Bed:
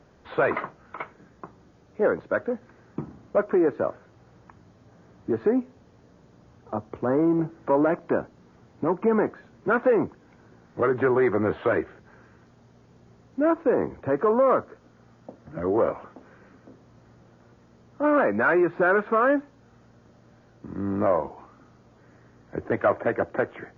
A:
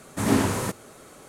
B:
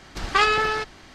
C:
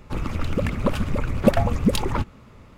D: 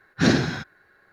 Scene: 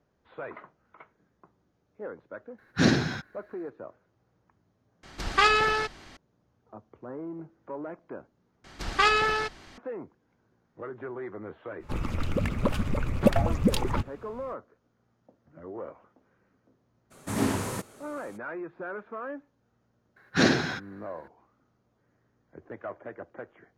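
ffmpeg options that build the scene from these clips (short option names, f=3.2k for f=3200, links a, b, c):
-filter_complex "[4:a]asplit=2[a][b];[2:a]asplit=2[c][d];[0:a]volume=-16.5dB[e];[b]bass=f=250:g=-8,treble=f=4k:g=-2[f];[e]asplit=3[g][h][i];[g]atrim=end=5.034[j];[c]atrim=end=1.14,asetpts=PTS-STARTPTS,volume=-2dB[k];[h]atrim=start=6.166:end=8.644[l];[d]atrim=end=1.14,asetpts=PTS-STARTPTS,volume=-3dB[m];[i]atrim=start=9.776[n];[a]atrim=end=1.12,asetpts=PTS-STARTPTS,volume=-3dB,afade=t=in:d=0.004:c=hsin,afade=t=out:st=1.116:d=0.004:c=hsin,adelay=2580[o];[3:a]atrim=end=2.77,asetpts=PTS-STARTPTS,volume=-4dB,afade=t=in:d=0.05,afade=t=out:st=2.72:d=0.05,adelay=11790[p];[1:a]atrim=end=1.28,asetpts=PTS-STARTPTS,volume=-5.5dB,afade=t=in:d=0.02,afade=t=out:st=1.26:d=0.02,adelay=17100[q];[f]atrim=end=1.12,asetpts=PTS-STARTPTS,afade=t=in:d=0.004:c=hsin,afade=t=out:st=1.116:d=0.004:c=hsin,adelay=20160[r];[j][k]acrossfade=d=0.004:c1=hsin:c2=hsin[s];[s][l]acrossfade=d=0.004:c1=hsin:c2=hsin[t];[t][m]acrossfade=d=0.004:c1=hsin:c2=hsin[u];[u][n]acrossfade=d=0.004:c1=hsin:c2=hsin[v];[v][o][p][q][r]amix=inputs=5:normalize=0"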